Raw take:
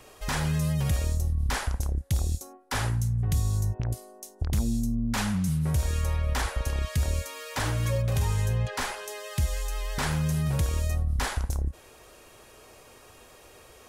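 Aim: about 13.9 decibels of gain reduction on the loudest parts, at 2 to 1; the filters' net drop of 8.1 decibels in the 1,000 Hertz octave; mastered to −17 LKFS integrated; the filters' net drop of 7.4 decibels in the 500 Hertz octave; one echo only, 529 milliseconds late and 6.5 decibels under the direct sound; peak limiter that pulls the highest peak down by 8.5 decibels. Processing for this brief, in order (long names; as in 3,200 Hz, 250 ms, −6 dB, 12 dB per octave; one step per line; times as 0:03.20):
parametric band 500 Hz −6.5 dB
parametric band 1,000 Hz −8.5 dB
downward compressor 2 to 1, threshold −49 dBFS
brickwall limiter −35.5 dBFS
single-tap delay 529 ms −6.5 dB
level +27.5 dB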